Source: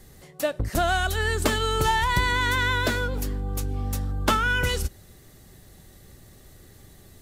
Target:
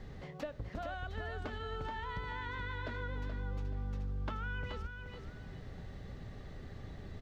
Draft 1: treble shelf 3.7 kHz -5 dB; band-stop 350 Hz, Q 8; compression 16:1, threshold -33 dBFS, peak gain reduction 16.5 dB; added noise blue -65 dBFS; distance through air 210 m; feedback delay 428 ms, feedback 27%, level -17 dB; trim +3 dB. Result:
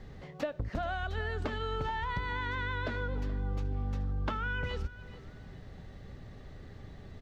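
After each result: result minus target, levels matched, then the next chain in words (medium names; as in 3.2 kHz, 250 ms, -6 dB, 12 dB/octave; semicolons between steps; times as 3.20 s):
compression: peak gain reduction -7 dB; echo-to-direct -10.5 dB
treble shelf 3.7 kHz -5 dB; band-stop 350 Hz, Q 8; compression 16:1, threshold -40.5 dBFS, peak gain reduction 23.5 dB; added noise blue -65 dBFS; distance through air 210 m; feedback delay 428 ms, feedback 27%, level -17 dB; trim +3 dB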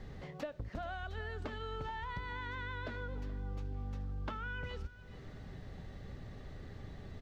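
echo-to-direct -10.5 dB
treble shelf 3.7 kHz -5 dB; band-stop 350 Hz, Q 8; compression 16:1, threshold -40.5 dBFS, peak gain reduction 23.5 dB; added noise blue -65 dBFS; distance through air 210 m; feedback delay 428 ms, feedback 27%, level -6.5 dB; trim +3 dB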